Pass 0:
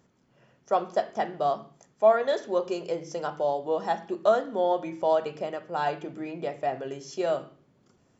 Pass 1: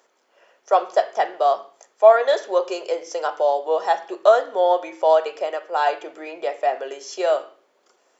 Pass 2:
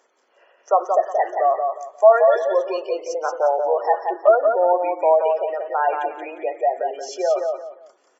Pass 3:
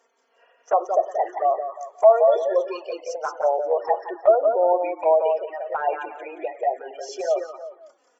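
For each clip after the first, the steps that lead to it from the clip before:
high-pass 450 Hz 24 dB/octave; trim +8 dB
spectral gate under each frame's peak -20 dB strong; feedback delay 177 ms, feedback 26%, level -5 dB
touch-sensitive flanger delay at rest 4.4 ms, full sweep at -15 dBFS

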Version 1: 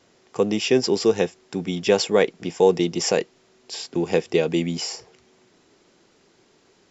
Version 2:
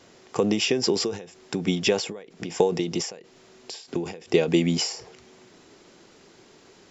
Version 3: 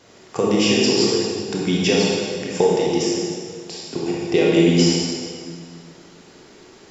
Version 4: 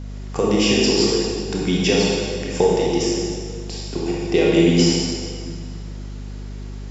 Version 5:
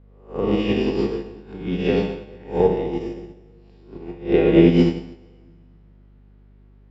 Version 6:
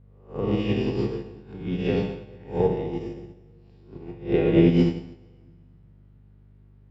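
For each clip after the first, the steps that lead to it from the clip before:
in parallel at 0 dB: compression, threshold -27 dBFS, peak gain reduction 15 dB; on the sum: endings held to a fixed fall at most 100 dB/s
reverberation RT60 1.8 s, pre-delay 21 ms, DRR -4 dB; trim +1 dB
hum 50 Hz, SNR 11 dB
reverse spectral sustain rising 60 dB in 0.71 s; distance through air 490 m; upward expansion 2.5:1, over -27 dBFS; trim +3.5 dB
peaking EQ 120 Hz +12 dB 0.62 oct; trim -5.5 dB

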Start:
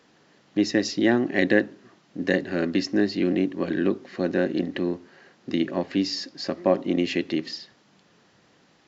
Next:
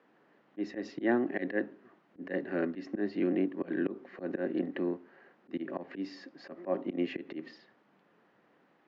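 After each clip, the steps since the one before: high-pass 88 Hz 12 dB/octave; three-band isolator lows -13 dB, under 190 Hz, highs -23 dB, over 2.4 kHz; slow attack 114 ms; trim -5 dB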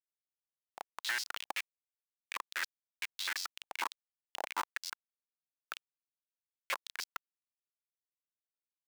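level held to a coarse grid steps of 10 dB; Schmitt trigger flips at -32.5 dBFS; step-sequenced high-pass 11 Hz 800–4900 Hz; trim +9.5 dB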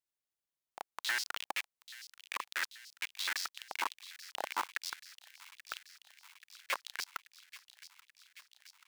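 feedback echo behind a high-pass 833 ms, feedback 69%, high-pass 2.4 kHz, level -13 dB; trim +1 dB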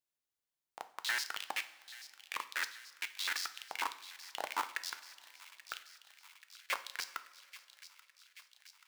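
two-slope reverb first 0.49 s, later 3.4 s, from -18 dB, DRR 9.5 dB; trim -1 dB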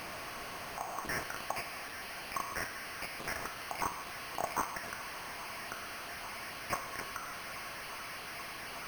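one-bit delta coder 16 kbps, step -41 dBFS; small resonant body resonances 690/1100 Hz, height 8 dB; careless resampling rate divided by 6×, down none, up hold; trim +4 dB

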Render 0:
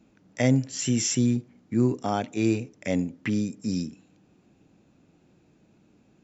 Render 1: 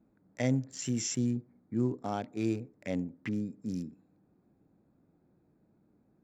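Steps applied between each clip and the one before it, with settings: local Wiener filter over 15 samples; trim -7.5 dB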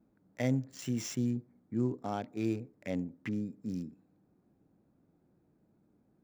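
median filter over 5 samples; trim -1.5 dB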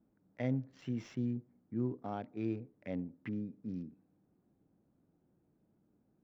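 distance through air 260 m; trim -3.5 dB

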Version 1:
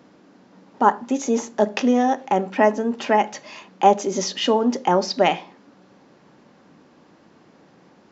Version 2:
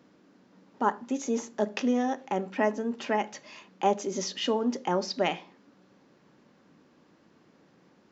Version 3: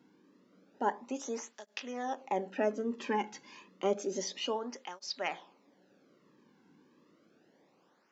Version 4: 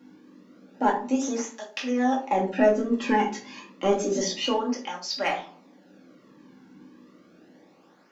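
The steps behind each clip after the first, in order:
peaking EQ 770 Hz -4 dB 0.77 oct; trim -7.5 dB
gain riding 0.5 s; cancelling through-zero flanger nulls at 0.3 Hz, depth 1.7 ms; trim -2.5 dB
in parallel at -10 dB: hard clipper -29.5 dBFS, distortion -10 dB; on the sum: reverberation RT60 0.40 s, pre-delay 4 ms, DRR -2 dB; trim +3.5 dB

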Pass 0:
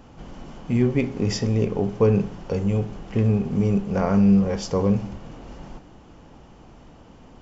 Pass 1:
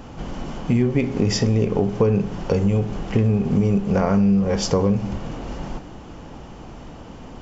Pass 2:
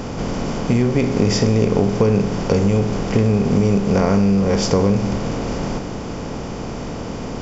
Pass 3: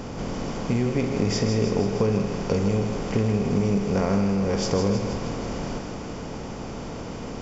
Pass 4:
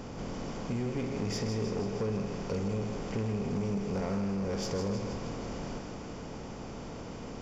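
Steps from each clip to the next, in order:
compression 4:1, threshold -25 dBFS, peak gain reduction 10.5 dB; trim +9 dB
spectral levelling over time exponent 0.6
thinning echo 159 ms, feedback 64%, level -6.5 dB; trim -7 dB
saturation -18 dBFS, distortion -15 dB; trim -7.5 dB

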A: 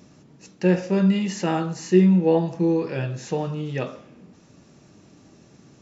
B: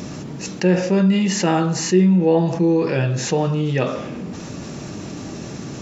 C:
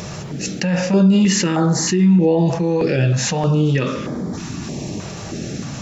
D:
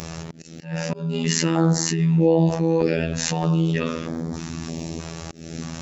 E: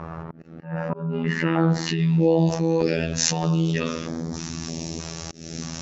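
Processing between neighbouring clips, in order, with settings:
level flattener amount 50%
peak limiter -11.5 dBFS, peak gain reduction 6.5 dB; step-sequenced notch 3.2 Hz 270–2700 Hz; trim +5 dB
robot voice 82 Hz; slow attack 279 ms; trim -1.5 dB
low-pass sweep 1.2 kHz -> 6 kHz, 1.08–2.33 s; trim -1.5 dB

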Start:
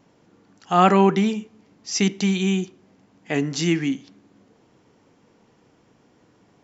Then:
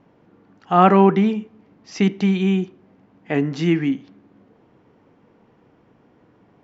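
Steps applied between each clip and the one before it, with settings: Bessel low-pass 2 kHz, order 2; trim +3 dB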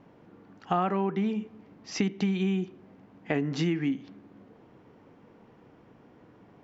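compression 8:1, threshold -24 dBFS, peak gain reduction 16 dB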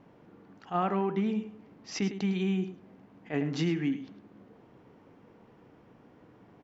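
delay 105 ms -13 dB; attacks held to a fixed rise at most 330 dB/s; trim -1.5 dB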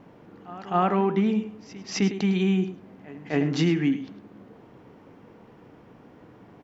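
pre-echo 260 ms -18.5 dB; trim +6.5 dB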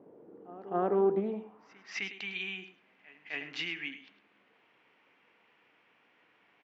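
band-pass sweep 430 Hz -> 2.5 kHz, 1.11–2.08 s; loudspeaker Doppler distortion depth 0.13 ms; trim +1 dB

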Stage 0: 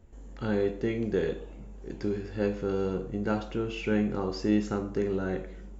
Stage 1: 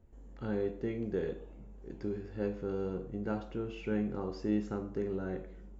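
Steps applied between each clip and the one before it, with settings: treble shelf 2 kHz -8 dB; trim -6 dB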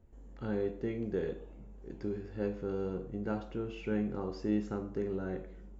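no audible change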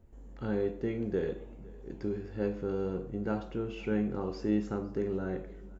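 delay 506 ms -22.5 dB; trim +2.5 dB

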